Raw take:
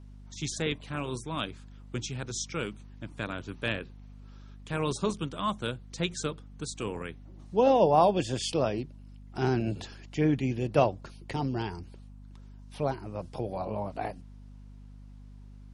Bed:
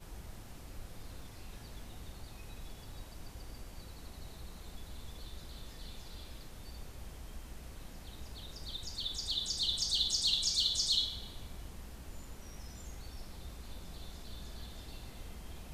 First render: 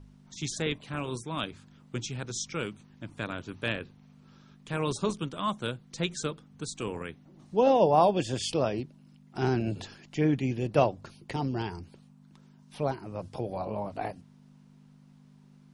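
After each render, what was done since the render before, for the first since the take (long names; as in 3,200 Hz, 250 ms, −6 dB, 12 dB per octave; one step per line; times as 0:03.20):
hum removal 50 Hz, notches 2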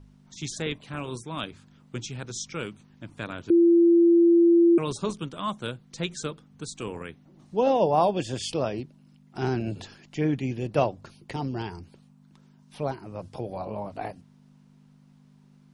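0:03.50–0:04.78: beep over 340 Hz −14 dBFS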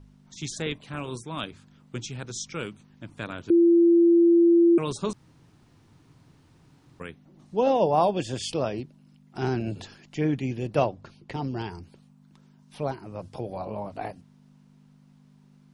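0:05.13–0:07.00: fill with room tone
0:10.85–0:11.44: high-frequency loss of the air 74 metres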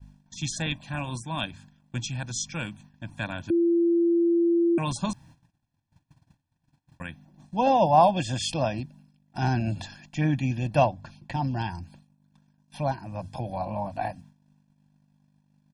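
noise gate −53 dBFS, range −28 dB
comb filter 1.2 ms, depth 95%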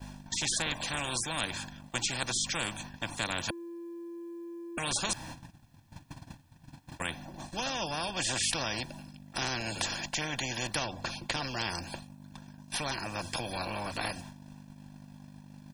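downward compressor 4 to 1, threshold −24 dBFS, peak gain reduction 10 dB
every bin compressed towards the loudest bin 4 to 1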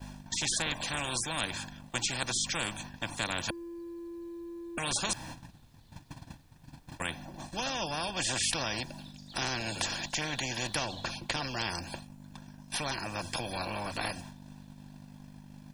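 mix in bed −17 dB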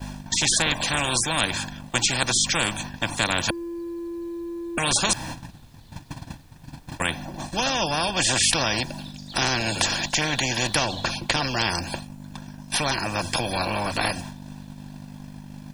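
level +10 dB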